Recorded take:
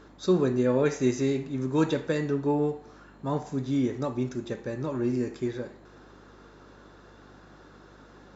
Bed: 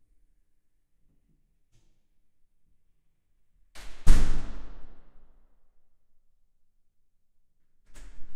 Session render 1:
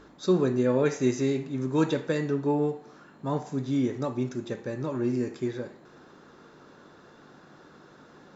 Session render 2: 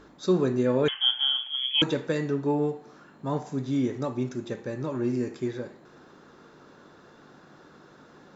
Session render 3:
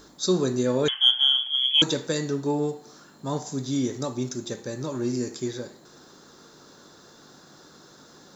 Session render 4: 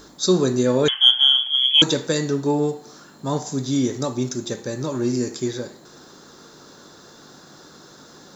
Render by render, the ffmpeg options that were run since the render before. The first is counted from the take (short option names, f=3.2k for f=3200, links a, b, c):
-af "bandreject=f=50:t=h:w=4,bandreject=f=100:t=h:w=4"
-filter_complex "[0:a]asettb=1/sr,asplit=3[a][b][c];[a]atrim=end=0.884[d];[b]atrim=start=0.88:end=1.82,asetpts=PTS-STARTPTS,afade=t=in:d=0.004:c=qsin,afade=t=out:st=0.936:d=0.004:c=qsin,lowpass=f=3k:t=q:w=0.5098,lowpass=f=3k:t=q:w=0.6013,lowpass=f=3k:t=q:w=0.9,lowpass=f=3k:t=q:w=2.563,afreqshift=-3500[e];[c]atrim=start=1.816[f];[d][e]acrossfade=d=0.004:c1=hsin:c2=qsin[g];[g][f]acrossfade=d=0.004:c1=qsin:c2=hsin"
-af "aexciter=amount=5.7:drive=4.4:freq=3.7k"
-af "volume=5dB"